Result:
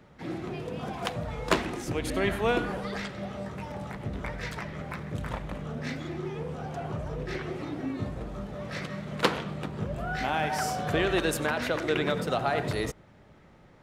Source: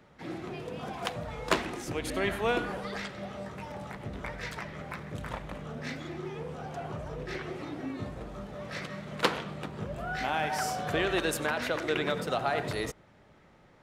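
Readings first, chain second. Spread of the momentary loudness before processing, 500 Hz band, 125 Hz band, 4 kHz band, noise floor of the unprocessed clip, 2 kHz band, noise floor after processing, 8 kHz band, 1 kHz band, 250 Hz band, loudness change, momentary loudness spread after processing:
11 LU, +2.5 dB, +5.0 dB, +1.0 dB, -59 dBFS, +1.0 dB, -55 dBFS, +1.0 dB, +1.5 dB, +4.0 dB, +2.5 dB, 10 LU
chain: bass shelf 320 Hz +5 dB; trim +1 dB

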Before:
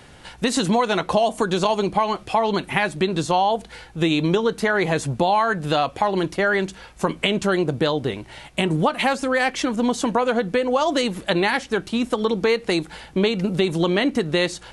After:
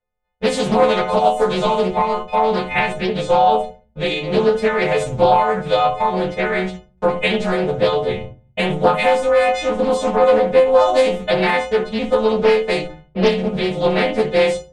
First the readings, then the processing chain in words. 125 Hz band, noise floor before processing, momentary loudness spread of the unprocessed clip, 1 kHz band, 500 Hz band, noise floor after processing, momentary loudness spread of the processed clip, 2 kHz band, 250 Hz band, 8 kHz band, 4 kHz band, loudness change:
0.0 dB, -45 dBFS, 5 LU, +5.0 dB, +6.5 dB, -54 dBFS, 8 LU, +1.5 dB, -0.5 dB, no reading, +0.5 dB, +4.5 dB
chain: partials quantised in pitch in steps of 3 st; RIAA curve playback; gate -27 dBFS, range -40 dB; resonant low shelf 410 Hz -7 dB, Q 3; level-controlled noise filter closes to 2.6 kHz, open at -12.5 dBFS; simulated room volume 180 m³, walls furnished, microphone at 1.7 m; loudspeaker Doppler distortion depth 0.44 ms; trim -3 dB

